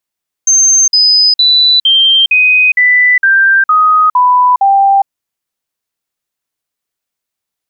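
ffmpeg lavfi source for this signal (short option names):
-f lavfi -i "aevalsrc='0.596*clip(min(mod(t,0.46),0.41-mod(t,0.46))/0.005,0,1)*sin(2*PI*6310*pow(2,-floor(t/0.46)/3)*mod(t,0.46))':d=4.6:s=44100"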